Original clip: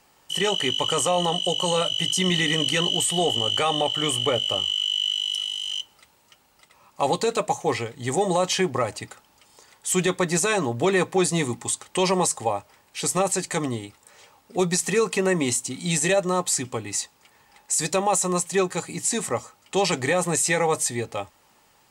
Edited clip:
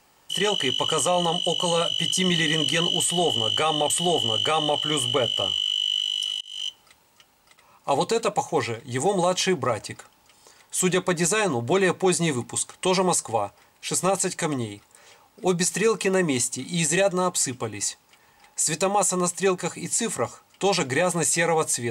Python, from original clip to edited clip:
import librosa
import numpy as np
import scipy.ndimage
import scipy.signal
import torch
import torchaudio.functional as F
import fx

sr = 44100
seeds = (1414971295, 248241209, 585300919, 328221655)

y = fx.edit(x, sr, fx.repeat(start_s=3.02, length_s=0.88, count=2),
    fx.fade_in_span(start_s=5.53, length_s=0.25), tone=tone)